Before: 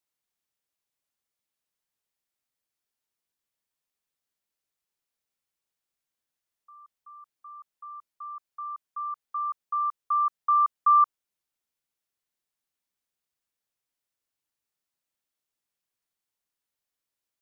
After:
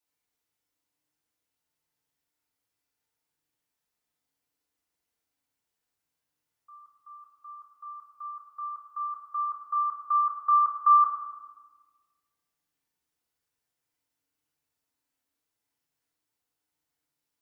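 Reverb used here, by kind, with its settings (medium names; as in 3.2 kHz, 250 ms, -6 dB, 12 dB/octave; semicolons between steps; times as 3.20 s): FDN reverb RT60 1.3 s, low-frequency decay 1.45×, high-frequency decay 0.45×, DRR -5 dB; trim -2.5 dB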